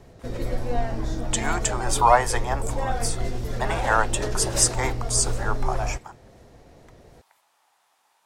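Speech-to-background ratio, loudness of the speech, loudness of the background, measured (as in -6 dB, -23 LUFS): 5.5 dB, -24.5 LUFS, -30.0 LUFS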